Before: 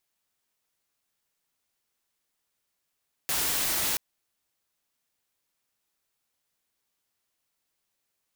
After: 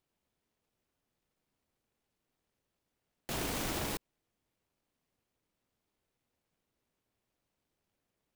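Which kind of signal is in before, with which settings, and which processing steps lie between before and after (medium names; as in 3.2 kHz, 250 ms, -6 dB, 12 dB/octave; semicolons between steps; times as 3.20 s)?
noise white, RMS -27.5 dBFS 0.68 s
tilt shelf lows +9 dB, about 1.1 kHz; peak limiter -25.5 dBFS; delay time shaken by noise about 1.7 kHz, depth 0.16 ms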